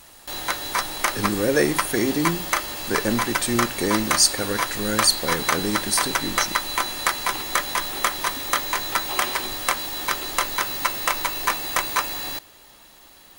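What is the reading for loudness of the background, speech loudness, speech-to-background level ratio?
-24.5 LUFS, -23.5 LUFS, 1.0 dB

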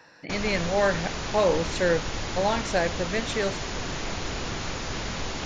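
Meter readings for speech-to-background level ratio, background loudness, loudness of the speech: 5.0 dB, -32.0 LUFS, -27.0 LUFS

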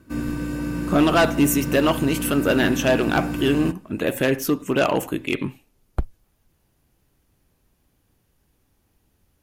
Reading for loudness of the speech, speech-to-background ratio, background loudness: -22.0 LUFS, 5.5 dB, -27.5 LUFS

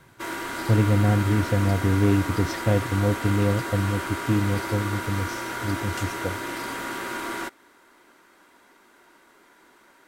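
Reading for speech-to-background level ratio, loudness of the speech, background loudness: 6.5 dB, -24.5 LUFS, -31.0 LUFS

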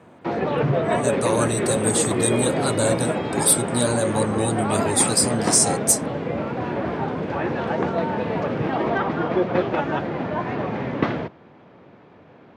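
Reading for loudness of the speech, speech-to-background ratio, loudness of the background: -21.5 LUFS, 3.0 dB, -24.5 LUFS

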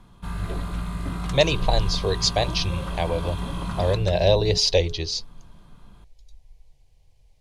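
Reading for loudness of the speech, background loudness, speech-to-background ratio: -23.5 LUFS, -31.0 LUFS, 7.5 dB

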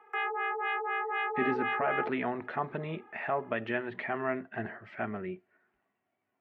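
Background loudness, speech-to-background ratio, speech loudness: -32.5 LUFS, -2.5 dB, -35.0 LUFS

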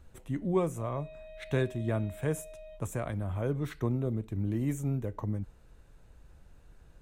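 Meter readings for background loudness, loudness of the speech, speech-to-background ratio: -49.5 LUFS, -33.5 LUFS, 16.0 dB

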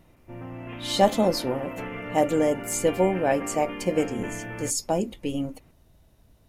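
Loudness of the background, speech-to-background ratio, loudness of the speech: -36.5 LUFS, 11.0 dB, -25.5 LUFS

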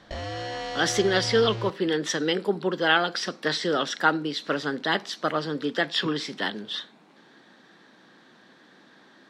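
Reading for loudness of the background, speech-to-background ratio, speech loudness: -34.0 LUFS, 8.5 dB, -25.5 LUFS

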